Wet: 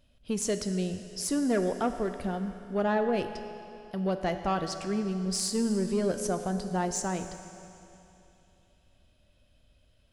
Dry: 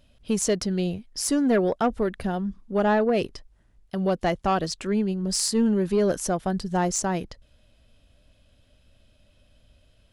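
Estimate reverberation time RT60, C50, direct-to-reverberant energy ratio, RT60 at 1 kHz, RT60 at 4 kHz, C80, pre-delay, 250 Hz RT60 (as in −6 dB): 2.9 s, 8.5 dB, 7.5 dB, 2.9 s, 2.8 s, 9.5 dB, 12 ms, 2.9 s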